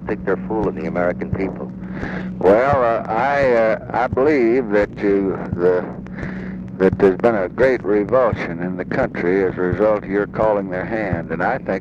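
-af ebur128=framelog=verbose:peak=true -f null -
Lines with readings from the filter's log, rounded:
Integrated loudness:
  I:         -18.5 LUFS
  Threshold: -28.7 LUFS
Loudness range:
  LRA:         2.6 LU
  Threshold: -38.3 LUFS
  LRA low:   -19.6 LUFS
  LRA high:  -16.9 LUFS
True peak:
  Peak:       -4.7 dBFS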